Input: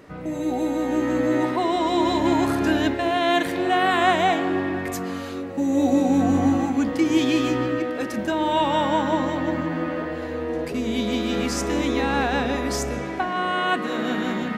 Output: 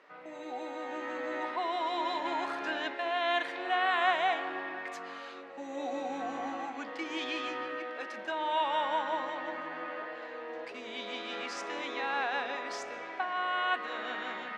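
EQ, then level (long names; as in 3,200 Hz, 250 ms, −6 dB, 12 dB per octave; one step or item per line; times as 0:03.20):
band-pass filter 730–3,700 Hz
−6.0 dB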